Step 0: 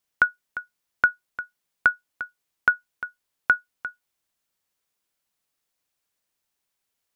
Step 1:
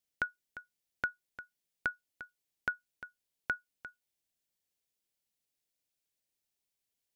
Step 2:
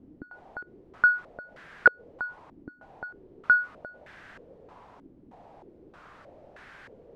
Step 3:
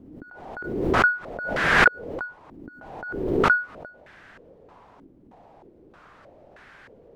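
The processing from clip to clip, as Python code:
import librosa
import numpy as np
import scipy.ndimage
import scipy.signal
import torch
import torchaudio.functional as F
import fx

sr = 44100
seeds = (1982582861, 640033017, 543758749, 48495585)

y1 = fx.peak_eq(x, sr, hz=1200.0, db=-12.0, octaves=1.0)
y1 = y1 * 10.0 ** (-6.0 / 20.0)
y2 = fx.power_curve(y1, sr, exponent=0.35)
y2 = fx.filter_held_lowpass(y2, sr, hz=3.2, low_hz=300.0, high_hz=1600.0)
y3 = fx.pre_swell(y2, sr, db_per_s=42.0)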